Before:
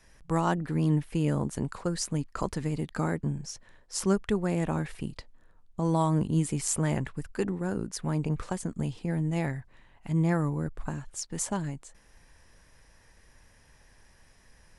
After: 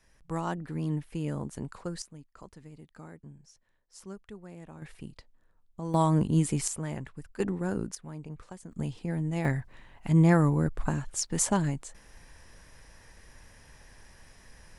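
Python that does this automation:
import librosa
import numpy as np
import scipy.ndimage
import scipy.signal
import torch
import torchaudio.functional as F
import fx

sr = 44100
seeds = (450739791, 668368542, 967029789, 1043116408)

y = fx.gain(x, sr, db=fx.steps((0.0, -6.0), (2.02, -18.0), (4.82, -8.0), (5.94, 1.5), (6.68, -7.5), (7.4, 0.0), (7.95, -12.5), (8.72, -2.0), (9.45, 5.0)))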